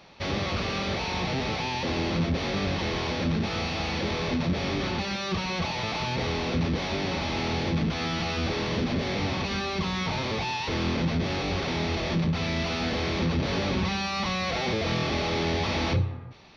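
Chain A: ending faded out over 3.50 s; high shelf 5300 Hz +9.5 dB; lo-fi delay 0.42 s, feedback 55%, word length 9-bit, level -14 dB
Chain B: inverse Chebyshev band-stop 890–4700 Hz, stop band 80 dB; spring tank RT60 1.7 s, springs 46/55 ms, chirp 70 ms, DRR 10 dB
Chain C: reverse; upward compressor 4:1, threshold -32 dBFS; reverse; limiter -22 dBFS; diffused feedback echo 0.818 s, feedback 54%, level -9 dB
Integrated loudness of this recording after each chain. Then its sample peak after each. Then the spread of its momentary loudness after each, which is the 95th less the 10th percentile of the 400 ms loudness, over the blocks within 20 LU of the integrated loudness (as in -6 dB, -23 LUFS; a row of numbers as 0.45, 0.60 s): -27.5, -34.0, -29.5 LUFS; -13.5, -15.5, -17.5 dBFS; 4, 6, 1 LU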